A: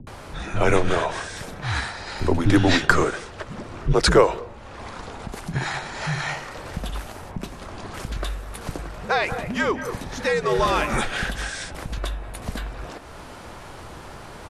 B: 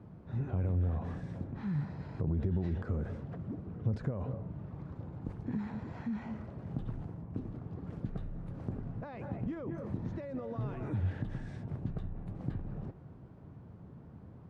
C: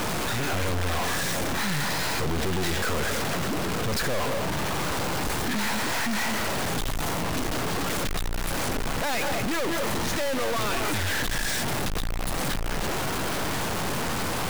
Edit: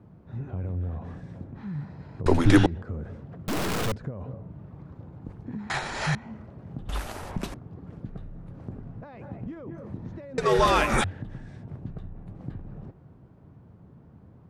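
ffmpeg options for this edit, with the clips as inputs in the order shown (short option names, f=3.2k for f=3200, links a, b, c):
-filter_complex "[0:a]asplit=4[a][b][c][d];[1:a]asplit=6[e][f][g][h][i][j];[e]atrim=end=2.262[k];[a]atrim=start=2.258:end=2.662[l];[f]atrim=start=2.658:end=3.482[m];[2:a]atrim=start=3.478:end=3.922[n];[g]atrim=start=3.918:end=5.702[o];[b]atrim=start=5.698:end=6.152[p];[h]atrim=start=6.148:end=6.892[q];[c]atrim=start=6.888:end=7.542[r];[i]atrim=start=7.538:end=10.382[s];[d]atrim=start=10.378:end=11.042[t];[j]atrim=start=11.038[u];[k][l]acrossfade=d=0.004:c1=hsin:c2=hsin[v];[v][m]acrossfade=d=0.004:c1=hsin:c2=hsin[w];[w][n]acrossfade=d=0.004:c1=hsin:c2=hsin[x];[x][o]acrossfade=d=0.004:c1=hsin:c2=hsin[y];[y][p]acrossfade=d=0.004:c1=hsin:c2=hsin[z];[z][q]acrossfade=d=0.004:c1=hsin:c2=hsin[aa];[aa][r]acrossfade=d=0.004:c1=hsin:c2=hsin[ab];[ab][s]acrossfade=d=0.004:c1=hsin:c2=hsin[ac];[ac][t]acrossfade=d=0.004:c1=hsin:c2=hsin[ad];[ad][u]acrossfade=d=0.004:c1=hsin:c2=hsin"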